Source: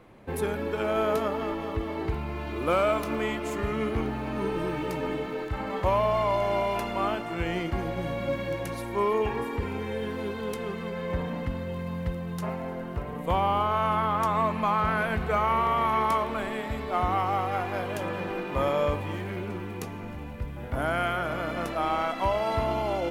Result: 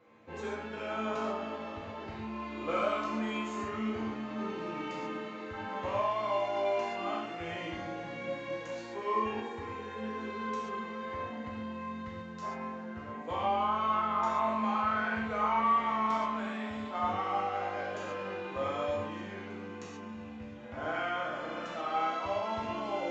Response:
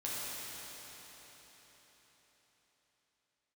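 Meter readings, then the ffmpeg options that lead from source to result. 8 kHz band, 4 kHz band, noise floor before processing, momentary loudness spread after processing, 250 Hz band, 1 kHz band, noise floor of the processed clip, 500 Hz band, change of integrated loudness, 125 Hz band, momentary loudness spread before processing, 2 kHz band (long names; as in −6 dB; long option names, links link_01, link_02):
can't be measured, −5.0 dB, −37 dBFS, 12 LU, −5.5 dB, −4.5 dB, −44 dBFS, −7.5 dB, −5.5 dB, −14.5 dB, 9 LU, −5.0 dB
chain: -filter_complex "[0:a]highpass=frequency=210:poles=1[link_01];[1:a]atrim=start_sample=2205,afade=type=out:start_time=0.32:duration=0.01,atrim=end_sample=14553,asetrate=79380,aresample=44100[link_02];[link_01][link_02]afir=irnorm=-1:irlink=0,aresample=16000,aresample=44100,volume=-2dB"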